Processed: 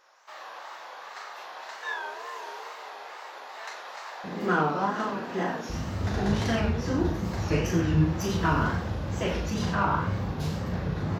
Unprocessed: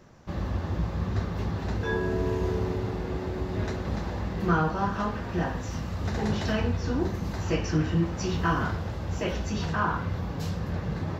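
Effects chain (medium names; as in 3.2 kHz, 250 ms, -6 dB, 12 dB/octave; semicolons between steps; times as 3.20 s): tracing distortion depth 0.029 ms; high-pass 730 Hz 24 dB/octave, from 4.24 s 200 Hz, from 5.69 s 54 Hz; echo from a far wall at 16 m, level -8 dB; wow and flutter 120 cents; doubling 39 ms -5.5 dB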